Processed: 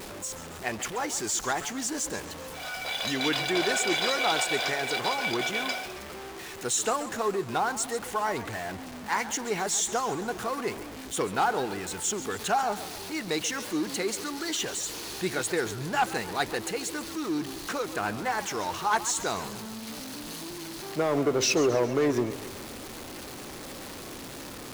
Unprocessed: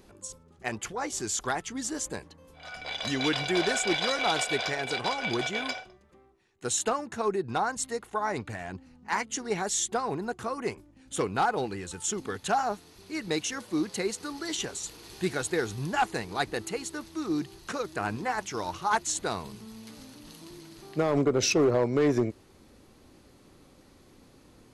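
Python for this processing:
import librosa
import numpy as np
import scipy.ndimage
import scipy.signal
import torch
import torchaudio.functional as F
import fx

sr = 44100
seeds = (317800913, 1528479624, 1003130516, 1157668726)

y = x + 0.5 * 10.0 ** (-34.0 / 20.0) * np.sign(x)
y = fx.low_shelf(y, sr, hz=200.0, db=-8.0)
y = fx.echo_warbled(y, sr, ms=136, feedback_pct=54, rate_hz=2.8, cents=162, wet_db=-14.0)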